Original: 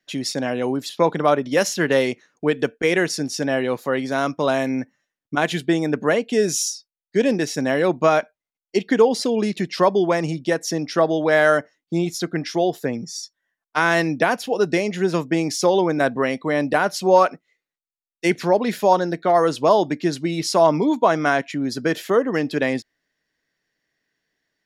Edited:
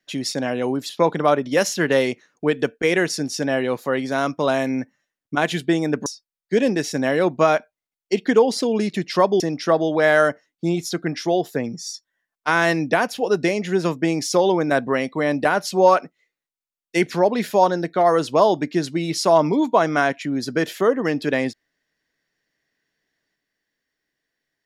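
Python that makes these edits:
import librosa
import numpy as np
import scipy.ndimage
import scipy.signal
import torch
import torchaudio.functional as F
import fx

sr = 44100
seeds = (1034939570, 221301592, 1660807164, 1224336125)

y = fx.edit(x, sr, fx.cut(start_s=6.06, length_s=0.63),
    fx.cut(start_s=10.03, length_s=0.66), tone=tone)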